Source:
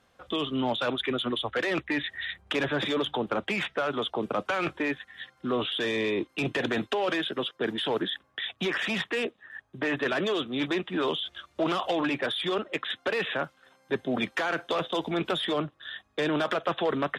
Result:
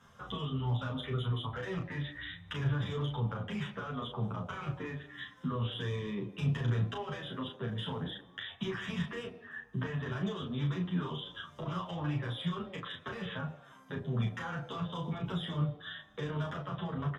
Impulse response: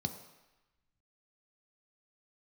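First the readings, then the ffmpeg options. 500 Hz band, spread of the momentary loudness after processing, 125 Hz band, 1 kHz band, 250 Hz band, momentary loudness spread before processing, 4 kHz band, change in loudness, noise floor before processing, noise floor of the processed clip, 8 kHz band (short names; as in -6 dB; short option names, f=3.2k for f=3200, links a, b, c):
-13.0 dB, 8 LU, +8.0 dB, -10.0 dB, -7.0 dB, 6 LU, -11.5 dB, -7.5 dB, -66 dBFS, -57 dBFS, under -10 dB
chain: -filter_complex "[0:a]equalizer=f=810:t=o:w=1.9:g=4,acrossover=split=130[a][b];[b]acompressor=threshold=-43dB:ratio=5[c];[a][c]amix=inputs=2:normalize=0,asplit=2[d][e];[e]adelay=34,volume=-4.5dB[f];[d][f]amix=inputs=2:normalize=0,asplit=2[g][h];[1:a]atrim=start_sample=2205[i];[h][i]afir=irnorm=-1:irlink=0,volume=-6dB[j];[g][j]amix=inputs=2:normalize=0,asplit=2[k][l];[l]adelay=9.4,afreqshift=-2[m];[k][m]amix=inputs=2:normalize=1,volume=6dB"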